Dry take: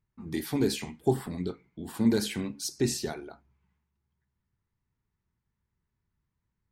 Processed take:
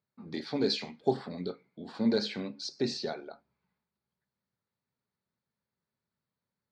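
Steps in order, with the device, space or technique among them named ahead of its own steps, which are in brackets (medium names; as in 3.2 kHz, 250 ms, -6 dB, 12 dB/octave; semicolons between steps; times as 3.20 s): kitchen radio (cabinet simulation 220–4600 Hz, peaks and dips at 330 Hz -7 dB, 560 Hz +7 dB, 1 kHz -4 dB, 1.9 kHz -4 dB, 2.9 kHz -7 dB, 4.4 kHz +7 dB); 0.64–1.17 s: peaking EQ 5.7 kHz +4 dB 2.4 oct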